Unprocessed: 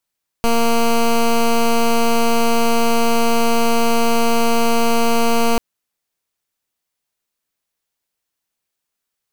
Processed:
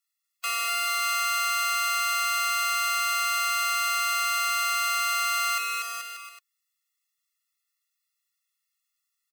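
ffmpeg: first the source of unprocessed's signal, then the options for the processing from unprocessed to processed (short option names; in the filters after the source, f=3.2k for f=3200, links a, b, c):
-f lavfi -i "aevalsrc='0.2*(2*lt(mod(232*t,1),0.13)-1)':d=5.14:s=44100"
-filter_complex "[0:a]highpass=f=1.3k:w=0.5412,highpass=f=1.3k:w=1.3066,asplit=2[a][b];[b]aecho=0:1:240|432|585.6|708.5|806.8:0.631|0.398|0.251|0.158|0.1[c];[a][c]amix=inputs=2:normalize=0,afftfilt=real='re*eq(mod(floor(b*sr/1024/360),2),1)':imag='im*eq(mod(floor(b*sr/1024/360),2),1)':win_size=1024:overlap=0.75"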